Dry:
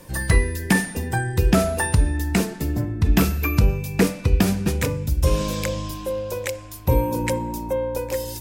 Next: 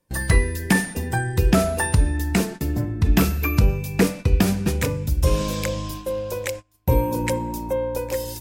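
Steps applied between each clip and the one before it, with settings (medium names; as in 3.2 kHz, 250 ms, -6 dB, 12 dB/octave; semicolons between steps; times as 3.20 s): gate -32 dBFS, range -27 dB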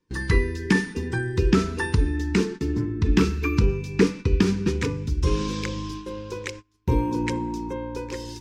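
FFT filter 150 Hz 0 dB, 430 Hz +8 dB, 640 Hz -23 dB, 940 Hz +1 dB, 5.9 kHz +1 dB, 14 kHz -25 dB; trim -3.5 dB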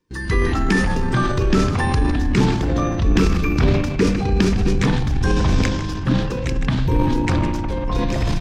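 frequency-shifting echo 155 ms, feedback 32%, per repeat -95 Hz, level -12.5 dB; ever faster or slower copies 86 ms, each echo -7 st, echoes 3; transient shaper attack -3 dB, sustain +7 dB; trim +2 dB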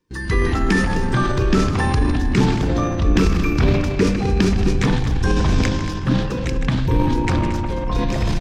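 delay 226 ms -12 dB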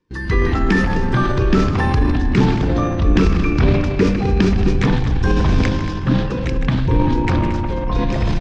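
distance through air 110 m; trim +2 dB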